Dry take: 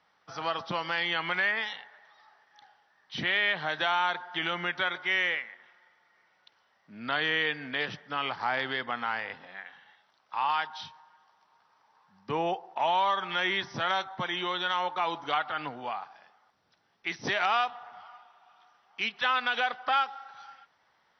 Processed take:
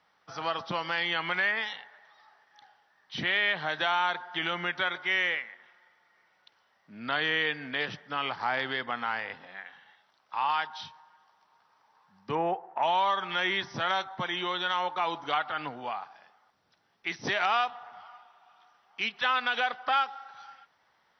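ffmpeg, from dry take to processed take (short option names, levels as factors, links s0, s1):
-filter_complex "[0:a]asettb=1/sr,asplit=3[s0][s1][s2];[s0]atrim=end=12.354[s3];[s1]atrim=start=12.35:end=12.83,asetpts=PTS-STARTPTS,afade=t=in:d=0.004:c=qsin,afade=t=out:st=0.476:d=0.004:c=qsin,highshelf=f=2600:t=q:w=1.5:g=-13[s4];[s2]atrim=start=12.826[s5];[s3][s4]acrossfade=d=0.004:c1=hsin:c2=qsin[s6];[s6][s5]acrossfade=d=0.004:c1=qsin:c2=hsin"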